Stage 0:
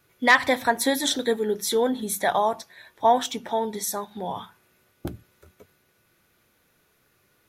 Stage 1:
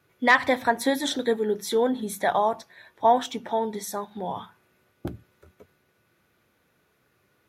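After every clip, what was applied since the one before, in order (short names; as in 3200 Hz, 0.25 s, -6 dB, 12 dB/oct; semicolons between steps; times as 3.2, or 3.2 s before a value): HPF 59 Hz; high shelf 3700 Hz -8.5 dB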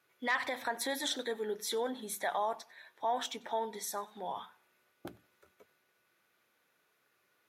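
limiter -17 dBFS, peak gain reduction 9 dB; HPF 780 Hz 6 dB/oct; warbling echo 95 ms, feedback 33%, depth 89 cents, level -24 dB; gain -4 dB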